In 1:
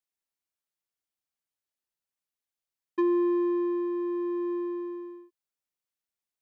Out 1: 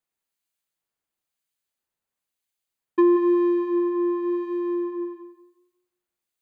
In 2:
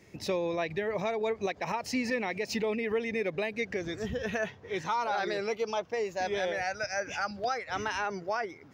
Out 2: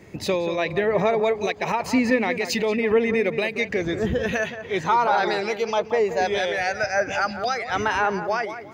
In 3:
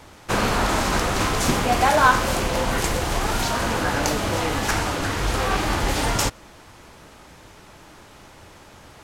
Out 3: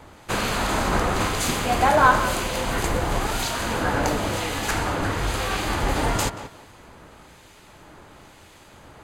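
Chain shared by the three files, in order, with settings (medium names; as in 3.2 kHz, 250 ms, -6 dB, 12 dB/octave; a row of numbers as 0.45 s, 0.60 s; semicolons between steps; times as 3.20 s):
harmonic tremolo 1 Hz, depth 50%, crossover 1.9 kHz; band-stop 5.5 kHz, Q 7.5; tape echo 180 ms, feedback 30%, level -9 dB, low-pass 1.7 kHz; normalise loudness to -23 LUFS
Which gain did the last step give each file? +8.0 dB, +11.0 dB, +0.5 dB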